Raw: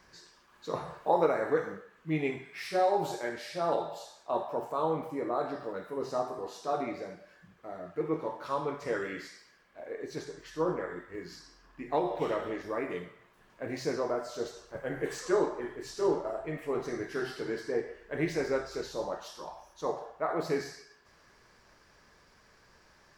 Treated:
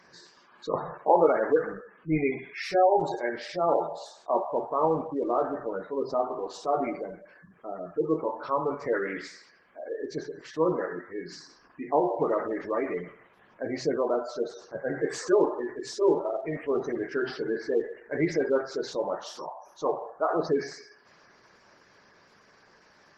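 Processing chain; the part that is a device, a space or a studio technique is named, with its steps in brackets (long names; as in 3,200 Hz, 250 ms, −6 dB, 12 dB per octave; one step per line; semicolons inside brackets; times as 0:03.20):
noise-suppressed video call (high-pass filter 150 Hz 12 dB per octave; gate on every frequency bin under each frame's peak −20 dB strong; level +5.5 dB; Opus 20 kbit/s 48,000 Hz)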